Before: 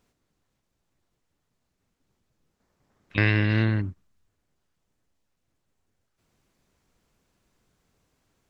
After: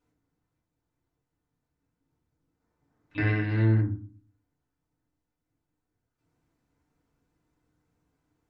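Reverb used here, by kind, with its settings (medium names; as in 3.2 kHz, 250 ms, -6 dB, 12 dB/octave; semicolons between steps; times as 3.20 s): FDN reverb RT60 0.4 s, low-frequency decay 1.55×, high-frequency decay 0.25×, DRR -7 dB; trim -14 dB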